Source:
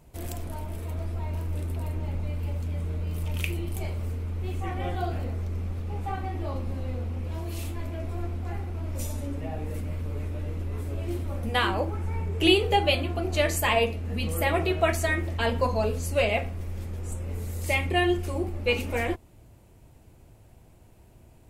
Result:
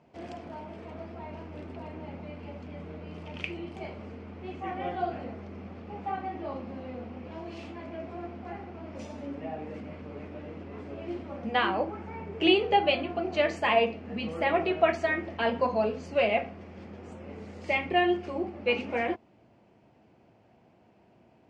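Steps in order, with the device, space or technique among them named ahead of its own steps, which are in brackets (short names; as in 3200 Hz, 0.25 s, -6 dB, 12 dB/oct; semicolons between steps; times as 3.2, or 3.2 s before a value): kitchen radio (speaker cabinet 200–4500 Hz, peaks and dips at 210 Hz +5 dB, 720 Hz +4 dB, 3800 Hz -8 dB); gain -1.5 dB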